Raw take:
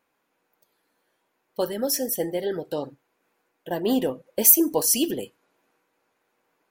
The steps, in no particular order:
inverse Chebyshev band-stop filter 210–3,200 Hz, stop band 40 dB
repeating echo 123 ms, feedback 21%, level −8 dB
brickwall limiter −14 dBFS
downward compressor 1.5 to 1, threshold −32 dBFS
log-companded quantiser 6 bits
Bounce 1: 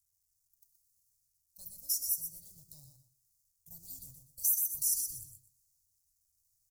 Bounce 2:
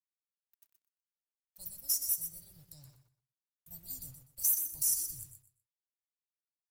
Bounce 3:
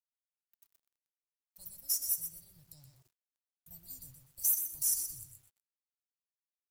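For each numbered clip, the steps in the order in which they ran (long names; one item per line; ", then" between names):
log-companded quantiser, then repeating echo, then brickwall limiter, then downward compressor, then inverse Chebyshev band-stop filter
brickwall limiter, then inverse Chebyshev band-stop filter, then log-companded quantiser, then downward compressor, then repeating echo
brickwall limiter, then repeating echo, then downward compressor, then inverse Chebyshev band-stop filter, then log-companded quantiser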